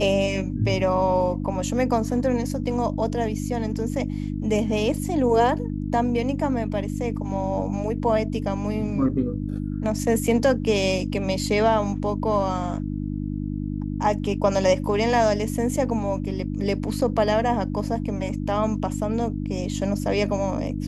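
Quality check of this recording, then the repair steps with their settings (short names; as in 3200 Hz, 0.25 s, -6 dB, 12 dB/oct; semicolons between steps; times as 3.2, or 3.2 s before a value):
hum 50 Hz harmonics 6 -28 dBFS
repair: de-hum 50 Hz, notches 6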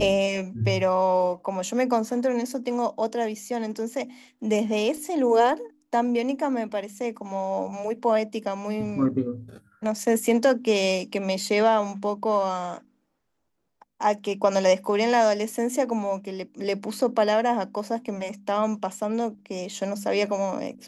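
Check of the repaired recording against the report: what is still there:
none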